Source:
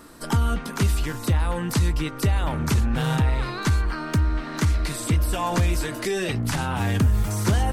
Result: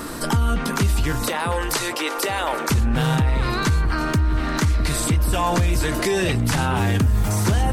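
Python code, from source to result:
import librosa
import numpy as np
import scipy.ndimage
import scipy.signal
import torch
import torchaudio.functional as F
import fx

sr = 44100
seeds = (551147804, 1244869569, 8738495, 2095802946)

y = fx.highpass(x, sr, hz=390.0, slope=24, at=(1.28, 2.7))
y = fx.echo_alternate(y, sr, ms=653, hz=1100.0, feedback_pct=54, wet_db=-13.0)
y = fx.env_flatten(y, sr, amount_pct=50)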